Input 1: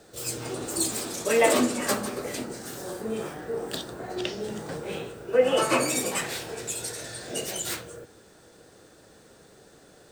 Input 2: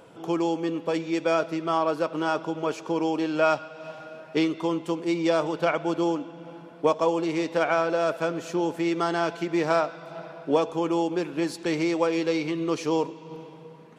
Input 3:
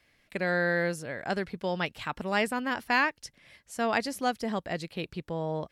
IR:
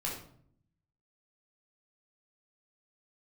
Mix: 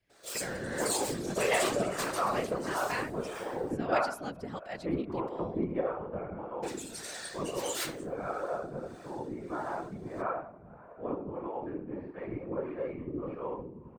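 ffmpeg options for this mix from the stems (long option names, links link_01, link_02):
-filter_complex "[0:a]asplit=2[link_01][link_02];[link_02]highpass=frequency=720:poles=1,volume=15dB,asoftclip=type=tanh:threshold=-6dB[link_03];[link_01][link_03]amix=inputs=2:normalize=0,lowpass=frequency=7200:poles=1,volume=-6dB,adelay=100,volume=-5.5dB,asplit=3[link_04][link_05][link_06];[link_04]atrim=end=3.72,asetpts=PTS-STARTPTS,afade=type=out:start_time=3.716:duration=0.004:curve=hsin[link_07];[link_05]atrim=start=3.72:end=6.63,asetpts=PTS-STARTPTS,volume=0[link_08];[link_06]atrim=start=6.63,asetpts=PTS-STARTPTS,afade=type=in:duration=0.004:curve=hsin[link_09];[link_07][link_08][link_09]concat=n=3:v=0:a=1,asplit=2[link_10][link_11];[link_11]volume=-13dB[link_12];[1:a]lowpass=frequency=1800:width=0.5412,lowpass=frequency=1800:width=1.3066,adelay=500,volume=-2dB,asplit=2[link_13][link_14];[link_14]volume=-4.5dB[link_15];[2:a]volume=0dB,asplit=2[link_16][link_17];[link_17]apad=whole_len=638696[link_18];[link_13][link_18]sidechaingate=range=-33dB:threshold=-54dB:ratio=16:detection=peak[link_19];[3:a]atrim=start_sample=2205[link_20];[link_12][link_15]amix=inputs=2:normalize=0[link_21];[link_21][link_20]afir=irnorm=-1:irlink=0[link_22];[link_10][link_19][link_16][link_22]amix=inputs=4:normalize=0,afftfilt=real='hypot(re,im)*cos(2*PI*random(0))':imag='hypot(re,im)*sin(2*PI*random(1))':win_size=512:overlap=0.75,acrossover=split=440[link_23][link_24];[link_23]aeval=exprs='val(0)*(1-0.7/2+0.7/2*cos(2*PI*1.6*n/s))':channel_layout=same[link_25];[link_24]aeval=exprs='val(0)*(1-0.7/2-0.7/2*cos(2*PI*1.6*n/s))':channel_layout=same[link_26];[link_25][link_26]amix=inputs=2:normalize=0"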